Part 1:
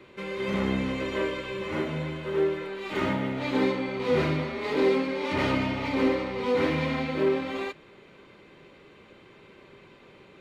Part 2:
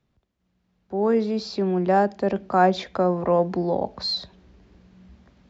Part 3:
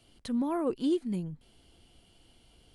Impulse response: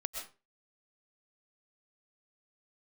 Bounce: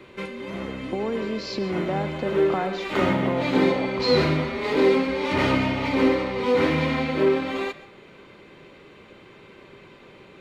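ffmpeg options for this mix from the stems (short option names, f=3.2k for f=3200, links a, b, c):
-filter_complex "[0:a]volume=2.5dB,asplit=2[a][b];[b]volume=-11dB[c];[1:a]acompressor=threshold=-32dB:ratio=4,volume=1.5dB,asplit=2[d][e];[e]volume=-6.5dB[f];[2:a]volume=-11.5dB,asplit=2[g][h];[h]apad=whole_len=458865[i];[a][i]sidechaincompress=threshold=-57dB:ratio=4:attack=8.1:release=878[j];[3:a]atrim=start_sample=2205[k];[c][f]amix=inputs=2:normalize=0[l];[l][k]afir=irnorm=-1:irlink=0[m];[j][d][g][m]amix=inputs=4:normalize=0"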